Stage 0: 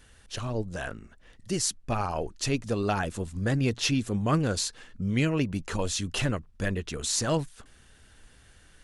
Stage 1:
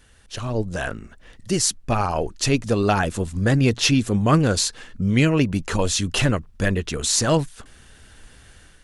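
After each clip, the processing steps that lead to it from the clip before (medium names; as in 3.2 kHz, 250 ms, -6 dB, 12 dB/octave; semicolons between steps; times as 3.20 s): level rider gain up to 6.5 dB; trim +1.5 dB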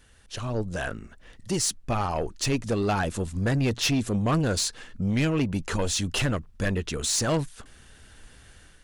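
saturation -15.5 dBFS, distortion -13 dB; trim -3 dB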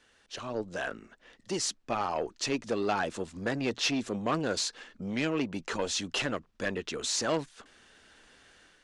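three-band isolator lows -18 dB, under 220 Hz, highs -24 dB, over 7.8 kHz; trim -2.5 dB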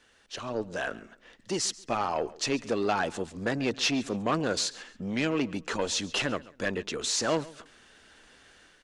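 feedback delay 136 ms, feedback 28%, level -20 dB; trim +2 dB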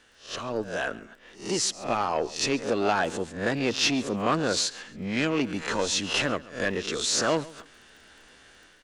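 reverse spectral sustain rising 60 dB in 0.37 s; crackle 14 per s -46 dBFS; trim +1.5 dB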